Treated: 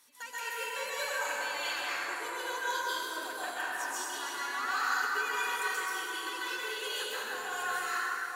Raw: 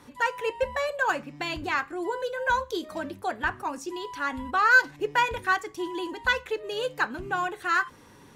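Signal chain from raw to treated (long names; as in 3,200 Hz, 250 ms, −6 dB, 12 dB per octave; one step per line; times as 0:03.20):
first difference
brickwall limiter −31.5 dBFS, peak gain reduction 12 dB
convolution reverb RT60 4.2 s, pre-delay 118 ms, DRR −11 dB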